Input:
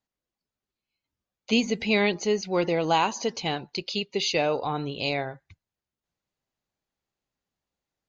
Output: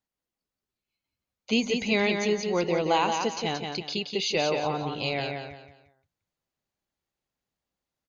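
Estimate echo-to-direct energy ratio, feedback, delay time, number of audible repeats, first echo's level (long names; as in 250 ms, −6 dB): −4.5 dB, 32%, 176 ms, 4, −5.0 dB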